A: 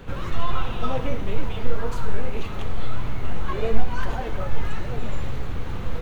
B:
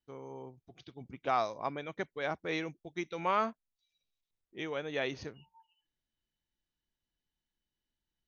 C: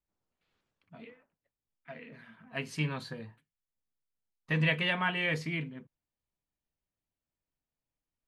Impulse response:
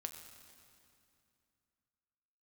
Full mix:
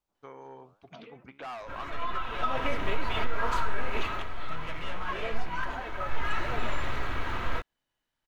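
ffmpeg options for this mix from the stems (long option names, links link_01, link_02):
-filter_complex "[0:a]aecho=1:1:3.1:0.36,adynamicequalizer=threshold=0.00631:dfrequency=1600:dqfactor=0.7:tfrequency=1600:tqfactor=0.7:attack=5:release=100:ratio=0.375:range=1.5:mode=boostabove:tftype=highshelf,adelay=1600,volume=2.5dB,afade=type=in:start_time=2.21:duration=0.76:silence=0.237137,afade=type=out:start_time=4.02:duration=0.24:silence=0.316228,afade=type=in:start_time=5.93:duration=0.49:silence=0.398107[link_01];[1:a]asoftclip=type=hard:threshold=-34.5dB,flanger=delay=7.1:depth=7.9:regen=84:speed=1.3:shape=sinusoidal,adelay=150,volume=1.5dB[link_02];[2:a]equalizer=frequency=1800:width_type=o:width=1:gain=-13.5,volume=0.5dB[link_03];[link_02][link_03]amix=inputs=2:normalize=0,asoftclip=type=tanh:threshold=-35dB,acompressor=threshold=-49dB:ratio=6,volume=0dB[link_04];[link_01][link_04]amix=inputs=2:normalize=0,equalizer=frequency=1400:width=0.43:gain=14,alimiter=limit=-16dB:level=0:latency=1:release=184"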